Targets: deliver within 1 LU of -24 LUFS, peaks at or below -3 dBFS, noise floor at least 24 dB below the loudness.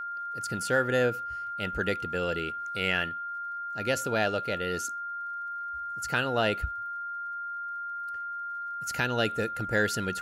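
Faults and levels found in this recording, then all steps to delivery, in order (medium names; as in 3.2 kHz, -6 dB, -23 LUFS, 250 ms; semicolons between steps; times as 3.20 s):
tick rate 46 per s; steady tone 1.4 kHz; tone level -33 dBFS; loudness -30.5 LUFS; peak level -12.0 dBFS; loudness target -24.0 LUFS
-> de-click; band-stop 1.4 kHz, Q 30; trim +6.5 dB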